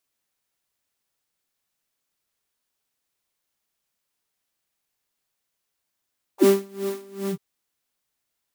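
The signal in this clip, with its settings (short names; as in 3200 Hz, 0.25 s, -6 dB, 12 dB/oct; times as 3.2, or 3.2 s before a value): synth patch with tremolo G4, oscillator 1 triangle, interval -12 st, detune 15 cents, oscillator 2 level -5 dB, noise -9.5 dB, filter highpass, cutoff 120 Hz, Q 9.8, filter envelope 3 oct, filter decay 0.05 s, filter sustain 35%, attack 68 ms, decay 0.24 s, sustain -11.5 dB, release 0.07 s, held 0.93 s, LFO 2.5 Hz, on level 21 dB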